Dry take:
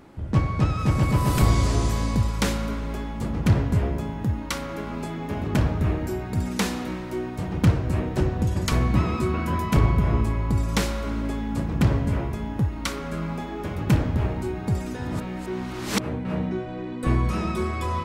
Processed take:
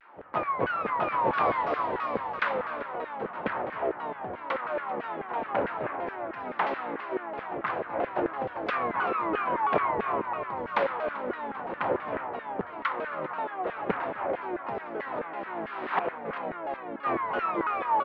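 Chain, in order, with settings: median filter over 5 samples; tone controls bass +1 dB, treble -13 dB; de-hum 91.13 Hz, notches 28; LFO high-pass saw down 4.6 Hz 460–1700 Hz; air absorption 420 m; feedback echo 0.391 s, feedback 53%, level -17 dB; shaped vibrato saw down 3 Hz, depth 250 cents; gain +2.5 dB

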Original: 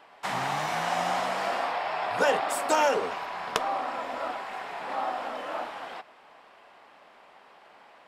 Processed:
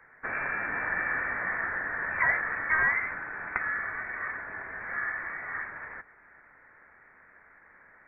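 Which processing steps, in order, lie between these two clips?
in parallel at -12 dB: sample-and-hold 13×; on the sum: inverted band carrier 2500 Hz; gain -3.5 dB

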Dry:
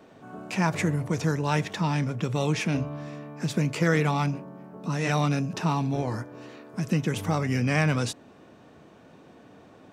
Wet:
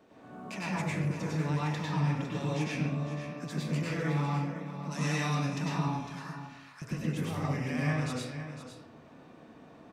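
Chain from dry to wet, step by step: 4.91–5.35 high shelf 2400 Hz +11.5 dB; 5.88–6.82 HPF 1200 Hz 24 dB/oct; compressor, threshold -27 dBFS, peak gain reduction 9.5 dB; echo 0.505 s -11 dB; reverb RT60 0.85 s, pre-delay 93 ms, DRR -6.5 dB; gain -9 dB

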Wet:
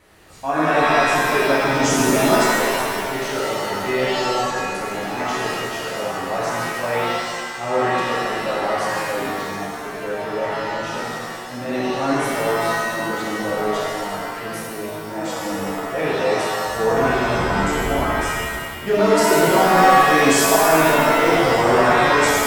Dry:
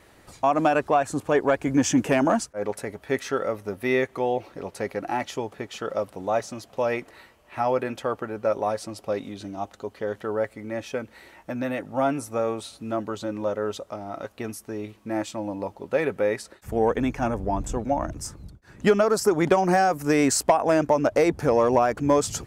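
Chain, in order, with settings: transient shaper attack -8 dB, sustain +2 dB; shimmer reverb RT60 1.6 s, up +7 st, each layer -2 dB, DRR -6.5 dB; gain -2.5 dB

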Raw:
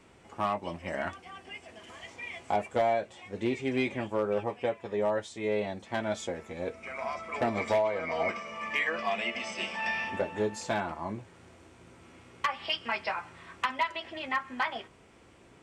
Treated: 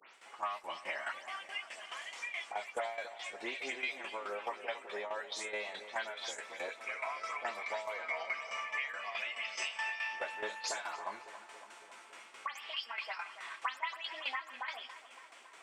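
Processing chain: spectral delay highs late, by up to 0.136 s; HPF 1100 Hz 12 dB/oct; compressor 6:1, threshold -42 dBFS, peak gain reduction 15 dB; tremolo saw down 4.7 Hz, depth 75%; on a send: darkening echo 0.279 s, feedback 72%, low-pass 2600 Hz, level -12.5 dB; on the sum: gain +9 dB

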